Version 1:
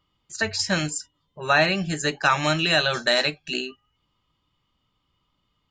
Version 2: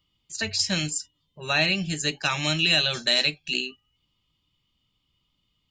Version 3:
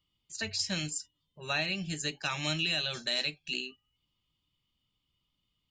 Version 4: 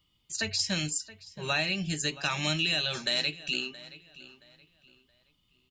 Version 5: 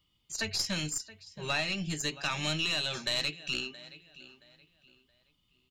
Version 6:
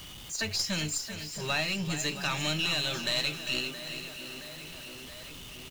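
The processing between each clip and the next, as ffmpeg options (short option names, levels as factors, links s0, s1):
-filter_complex "[0:a]highshelf=f=2000:t=q:w=1.5:g=8,acrossover=split=320[s0][s1];[s0]acontrast=55[s2];[s2][s1]amix=inputs=2:normalize=0,volume=0.422"
-af "alimiter=limit=0.224:level=0:latency=1:release=185,volume=0.447"
-filter_complex "[0:a]asplit=2[s0][s1];[s1]acompressor=threshold=0.01:ratio=6,volume=1.41[s2];[s0][s2]amix=inputs=2:normalize=0,asplit=2[s3][s4];[s4]adelay=673,lowpass=f=4300:p=1,volume=0.141,asplit=2[s5][s6];[s6]adelay=673,lowpass=f=4300:p=1,volume=0.33,asplit=2[s7][s8];[s8]adelay=673,lowpass=f=4300:p=1,volume=0.33[s9];[s3][s5][s7][s9]amix=inputs=4:normalize=0"
-af "aeval=exprs='(tanh(8.91*val(0)+0.5)-tanh(0.5))/8.91':c=same"
-af "aeval=exprs='val(0)+0.5*0.0106*sgn(val(0))':c=same,aecho=1:1:397|794|1191|1588|1985:0.299|0.143|0.0688|0.033|0.0158"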